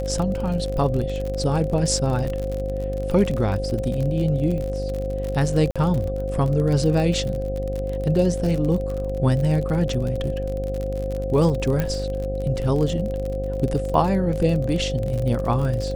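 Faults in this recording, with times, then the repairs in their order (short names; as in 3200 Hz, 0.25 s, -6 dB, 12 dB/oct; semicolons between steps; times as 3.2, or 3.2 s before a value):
buzz 50 Hz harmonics 15 -28 dBFS
crackle 44/s -26 dBFS
tone 530 Hz -27 dBFS
5.71–5.76 gap 46 ms
11.8 pop -11 dBFS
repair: de-click; de-hum 50 Hz, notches 15; notch 530 Hz, Q 30; interpolate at 5.71, 46 ms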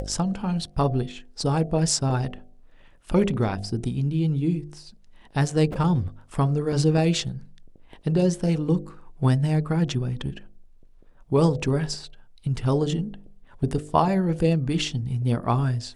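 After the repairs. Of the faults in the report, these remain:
none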